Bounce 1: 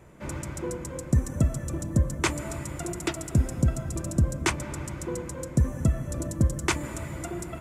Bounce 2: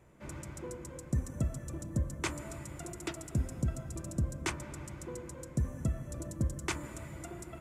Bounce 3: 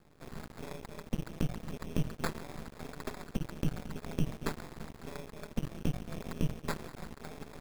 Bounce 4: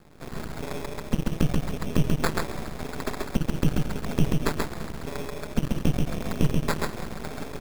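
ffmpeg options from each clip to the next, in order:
-af "bandreject=f=87.24:t=h:w=4,bandreject=f=174.48:t=h:w=4,bandreject=f=261.72:t=h:w=4,bandreject=f=348.96:t=h:w=4,bandreject=f=436.2:t=h:w=4,bandreject=f=523.44:t=h:w=4,bandreject=f=610.68:t=h:w=4,bandreject=f=697.92:t=h:w=4,bandreject=f=785.16:t=h:w=4,bandreject=f=872.4:t=h:w=4,bandreject=f=959.64:t=h:w=4,bandreject=f=1046.88:t=h:w=4,bandreject=f=1134.12:t=h:w=4,bandreject=f=1221.36:t=h:w=4,bandreject=f=1308.6:t=h:w=4,bandreject=f=1395.84:t=h:w=4,bandreject=f=1483.08:t=h:w=4,bandreject=f=1570.32:t=h:w=4,bandreject=f=1657.56:t=h:w=4,bandreject=f=1744.8:t=h:w=4,bandreject=f=1832.04:t=h:w=4,volume=0.355"
-af "acrusher=samples=15:mix=1:aa=0.000001,aeval=exprs='val(0)*sin(2*PI*81*n/s)':c=same,aeval=exprs='max(val(0),0)':c=same,volume=1.88"
-af "aecho=1:1:133:0.708,volume=2.82"

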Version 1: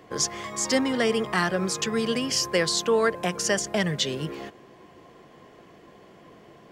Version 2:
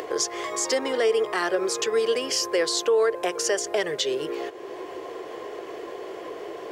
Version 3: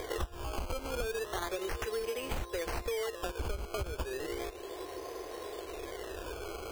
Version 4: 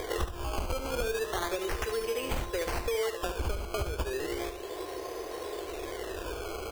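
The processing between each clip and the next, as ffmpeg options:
-af "lowshelf=f=280:t=q:w=3:g=-12,alimiter=limit=0.2:level=0:latency=1:release=96,acompressor=mode=upward:threshold=0.0631:ratio=2.5"
-af "acrusher=samples=16:mix=1:aa=0.000001:lfo=1:lforange=16:lforate=0.34,lowshelf=f=100:t=q:w=1.5:g=14,acompressor=threshold=0.0447:ratio=6,volume=0.531"
-af "aecho=1:1:72:0.355,volume=1.5"

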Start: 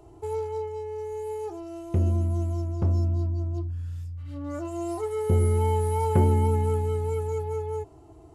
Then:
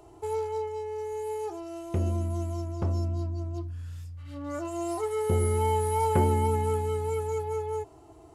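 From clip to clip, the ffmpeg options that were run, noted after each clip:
-af "lowshelf=f=390:g=-9,volume=1.5"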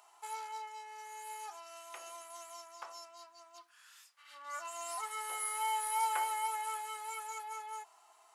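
-af "highpass=f=990:w=0.5412,highpass=f=990:w=1.3066,volume=1.12"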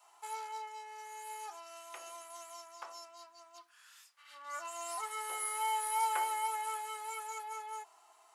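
-af "adynamicequalizer=threshold=0.00158:dfrequency=330:dqfactor=1.2:tfrequency=330:tqfactor=1.2:attack=5:release=100:ratio=0.375:range=2.5:mode=boostabove:tftype=bell"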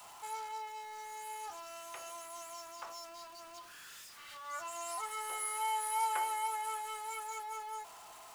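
-af "aeval=exprs='val(0)+0.5*0.00422*sgn(val(0))':c=same,volume=0.841"

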